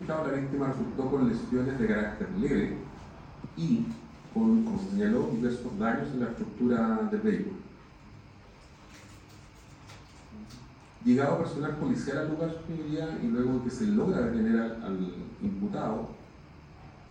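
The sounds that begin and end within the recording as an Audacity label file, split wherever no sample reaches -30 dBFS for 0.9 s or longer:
11.060000	16.050000	sound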